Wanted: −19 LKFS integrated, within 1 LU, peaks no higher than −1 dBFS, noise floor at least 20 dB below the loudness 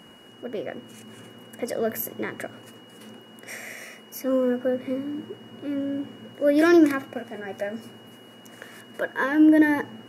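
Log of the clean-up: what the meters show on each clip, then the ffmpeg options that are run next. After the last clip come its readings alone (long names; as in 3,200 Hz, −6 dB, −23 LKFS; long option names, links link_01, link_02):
interfering tone 2,900 Hz; level of the tone −52 dBFS; integrated loudness −24.0 LKFS; sample peak −7.5 dBFS; target loudness −19.0 LKFS
→ -af "bandreject=frequency=2900:width=30"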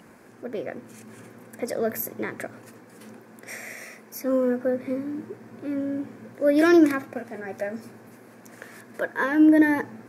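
interfering tone none found; integrated loudness −24.0 LKFS; sample peak −7.5 dBFS; target loudness −19.0 LKFS
→ -af "volume=5dB"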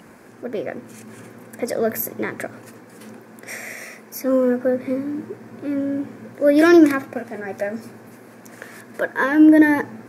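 integrated loudness −19.0 LKFS; sample peak −2.5 dBFS; background noise floor −45 dBFS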